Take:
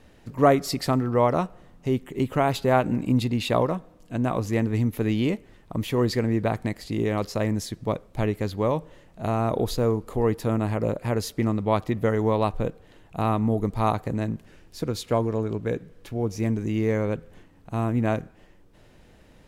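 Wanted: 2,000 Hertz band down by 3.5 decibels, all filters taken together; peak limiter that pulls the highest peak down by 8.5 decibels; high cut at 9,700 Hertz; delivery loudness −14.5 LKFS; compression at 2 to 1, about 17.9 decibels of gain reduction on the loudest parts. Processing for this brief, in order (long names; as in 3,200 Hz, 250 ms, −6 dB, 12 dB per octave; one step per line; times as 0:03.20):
low-pass filter 9,700 Hz
parametric band 2,000 Hz −4.5 dB
downward compressor 2 to 1, threshold −47 dBFS
level +29 dB
brickwall limiter −3.5 dBFS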